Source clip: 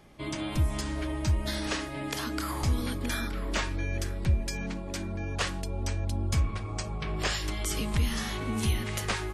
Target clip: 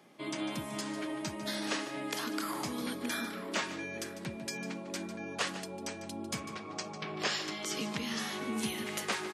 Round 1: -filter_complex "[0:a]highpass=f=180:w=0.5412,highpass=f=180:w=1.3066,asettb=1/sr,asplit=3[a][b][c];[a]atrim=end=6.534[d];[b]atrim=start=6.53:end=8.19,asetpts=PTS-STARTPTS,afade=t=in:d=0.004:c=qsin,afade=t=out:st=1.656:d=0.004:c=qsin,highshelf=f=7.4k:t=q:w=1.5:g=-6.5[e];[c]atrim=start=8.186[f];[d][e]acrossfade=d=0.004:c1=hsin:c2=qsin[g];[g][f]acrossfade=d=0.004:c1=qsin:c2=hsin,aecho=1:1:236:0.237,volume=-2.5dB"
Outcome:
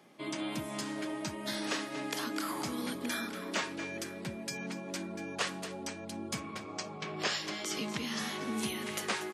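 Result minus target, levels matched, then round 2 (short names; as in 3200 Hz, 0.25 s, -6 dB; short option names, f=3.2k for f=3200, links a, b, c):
echo 87 ms late
-filter_complex "[0:a]highpass=f=180:w=0.5412,highpass=f=180:w=1.3066,asettb=1/sr,asplit=3[a][b][c];[a]atrim=end=6.534[d];[b]atrim=start=6.53:end=8.19,asetpts=PTS-STARTPTS,afade=t=in:d=0.004:c=qsin,afade=t=out:st=1.656:d=0.004:c=qsin,highshelf=f=7.4k:t=q:w=1.5:g=-6.5[e];[c]atrim=start=8.186[f];[d][e]acrossfade=d=0.004:c1=hsin:c2=qsin[g];[g][f]acrossfade=d=0.004:c1=qsin:c2=hsin,aecho=1:1:149:0.237,volume=-2.5dB"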